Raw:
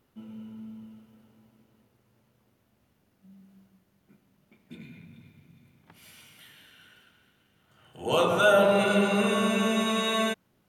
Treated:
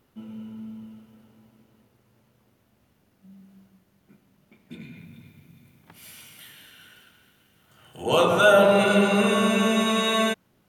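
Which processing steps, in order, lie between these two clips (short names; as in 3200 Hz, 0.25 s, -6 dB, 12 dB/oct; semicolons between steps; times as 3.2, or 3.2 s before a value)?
4.96–8.02 high shelf 10000 Hz -> 5500 Hz +8 dB; gain +4 dB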